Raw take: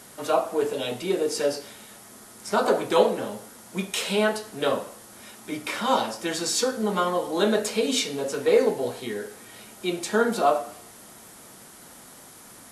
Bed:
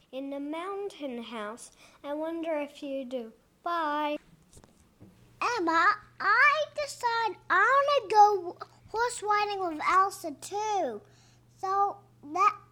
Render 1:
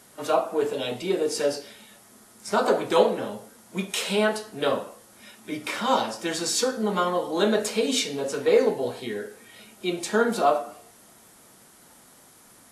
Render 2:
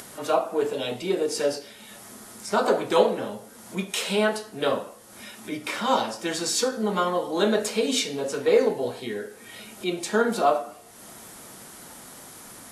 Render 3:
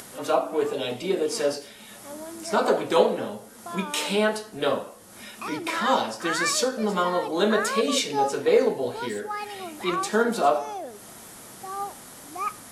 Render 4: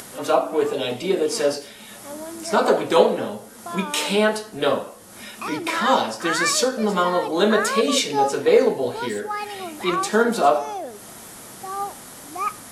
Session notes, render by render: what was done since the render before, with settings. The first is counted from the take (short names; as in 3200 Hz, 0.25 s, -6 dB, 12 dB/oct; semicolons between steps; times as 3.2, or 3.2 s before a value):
noise print and reduce 6 dB
upward compressor, threshold -34 dBFS; ending taper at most 270 dB/s
add bed -6 dB
gain +4 dB